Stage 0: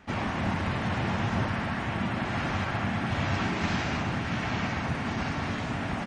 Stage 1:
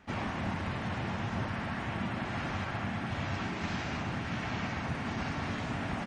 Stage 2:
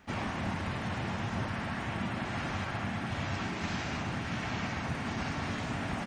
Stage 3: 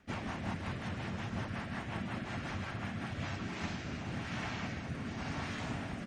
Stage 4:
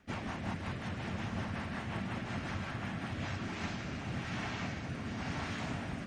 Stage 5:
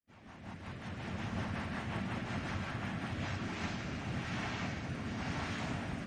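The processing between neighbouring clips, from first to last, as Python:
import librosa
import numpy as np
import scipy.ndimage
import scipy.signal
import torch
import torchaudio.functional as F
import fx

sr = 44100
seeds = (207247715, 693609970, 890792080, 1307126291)

y1 = fx.rider(x, sr, range_db=10, speed_s=0.5)
y1 = y1 * 10.0 ** (-5.5 / 20.0)
y2 = fx.high_shelf(y1, sr, hz=7400.0, db=9.0)
y3 = fx.rotary_switch(y2, sr, hz=5.5, then_hz=0.9, switch_at_s=2.93)
y3 = y3 * 10.0 ** (-2.5 / 20.0)
y4 = y3 + 10.0 ** (-7.5 / 20.0) * np.pad(y3, (int(976 * sr / 1000.0), 0))[:len(y3)]
y5 = fx.fade_in_head(y4, sr, length_s=1.42)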